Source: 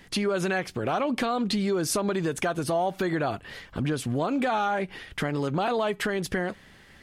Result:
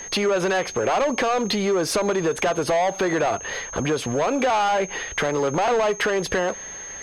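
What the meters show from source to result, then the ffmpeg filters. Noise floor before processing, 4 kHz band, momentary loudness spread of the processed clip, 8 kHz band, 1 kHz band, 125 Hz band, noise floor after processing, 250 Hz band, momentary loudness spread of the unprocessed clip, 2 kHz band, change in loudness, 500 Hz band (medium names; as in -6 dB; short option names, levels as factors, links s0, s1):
-53 dBFS, +6.0 dB, 5 LU, +8.5 dB, +6.0 dB, -0.5 dB, -36 dBFS, +1.5 dB, 6 LU, +6.0 dB, +5.0 dB, +7.0 dB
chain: -filter_complex "[0:a]equalizer=f=125:t=o:w=1:g=-5,equalizer=f=250:t=o:w=1:g=-4,equalizer=f=500:t=o:w=1:g=9,equalizer=f=1000:t=o:w=1:g=6,equalizer=f=2000:t=o:w=1:g=3,equalizer=f=8000:t=o:w=1:g=-8,acrossover=split=260[s0][s1];[s1]asoftclip=type=tanh:threshold=0.119[s2];[s0][s2]amix=inputs=2:normalize=0,lowpass=11000,aeval=exprs='val(0)+0.00708*sin(2*PI*6400*n/s)':c=same,equalizer=f=4700:w=0.85:g=3,acompressor=threshold=0.0501:ratio=2,aeval=exprs='0.15*(cos(1*acos(clip(val(0)/0.15,-1,1)))-cos(1*PI/2))+0.00944*(cos(5*acos(clip(val(0)/0.15,-1,1)))-cos(5*PI/2))':c=same,volume=1.68"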